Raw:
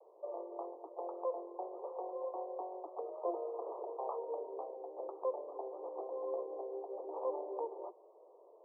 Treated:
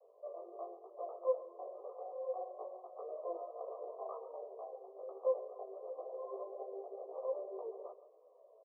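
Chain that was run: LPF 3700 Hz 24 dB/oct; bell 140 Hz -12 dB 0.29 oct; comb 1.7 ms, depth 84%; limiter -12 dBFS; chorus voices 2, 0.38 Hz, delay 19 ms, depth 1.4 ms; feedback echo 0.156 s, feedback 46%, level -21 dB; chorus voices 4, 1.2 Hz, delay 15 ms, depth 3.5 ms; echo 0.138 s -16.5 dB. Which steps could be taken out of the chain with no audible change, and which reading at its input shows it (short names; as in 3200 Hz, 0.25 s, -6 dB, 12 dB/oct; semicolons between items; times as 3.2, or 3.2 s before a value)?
LPF 3700 Hz: input band ends at 1200 Hz; bell 140 Hz: input band starts at 290 Hz; limiter -12 dBFS: input peak -20.5 dBFS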